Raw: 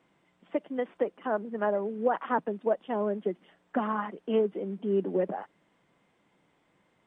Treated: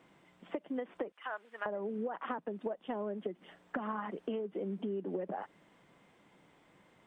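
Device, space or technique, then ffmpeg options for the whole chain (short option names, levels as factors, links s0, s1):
serial compression, peaks first: -filter_complex "[0:a]asettb=1/sr,asplit=3[s0][s1][s2];[s0]atrim=end=1.124[s3];[s1]atrim=start=1.12:end=1.66,asetpts=PTS-STARTPTS,afade=t=in:d=0.004:c=qsin,afade=t=out:st=0.536:d=0.004:c=qsin,highpass=1500[s4];[s2]atrim=start=1.656[s5];[s3][s4]acrossfade=d=0.004:c1=hsin:c2=qsin[s6];[s6][s5]acrossfade=d=0.004:c1=qsin:c2=hsin,acompressor=threshold=0.0224:ratio=6,acompressor=threshold=0.00891:ratio=2.5,volume=1.68"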